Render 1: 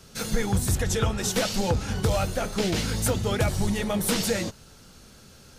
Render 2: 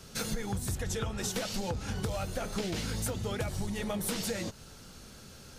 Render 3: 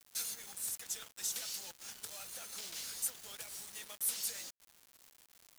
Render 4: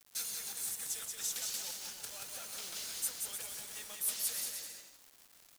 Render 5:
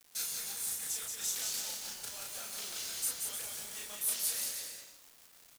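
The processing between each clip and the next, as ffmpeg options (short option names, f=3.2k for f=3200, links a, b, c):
-af "acompressor=threshold=-31dB:ratio=6"
-af "aderivative,acrusher=bits=7:mix=0:aa=0.000001"
-af "aecho=1:1:180|306|394.2|455.9|499.2:0.631|0.398|0.251|0.158|0.1"
-filter_complex "[0:a]asplit=2[a][b];[b]adelay=34,volume=-2dB[c];[a][c]amix=inputs=2:normalize=0"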